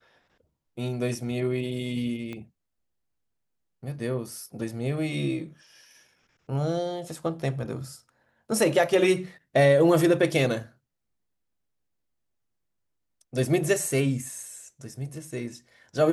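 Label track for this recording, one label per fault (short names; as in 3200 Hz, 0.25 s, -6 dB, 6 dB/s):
2.330000	2.330000	pop -24 dBFS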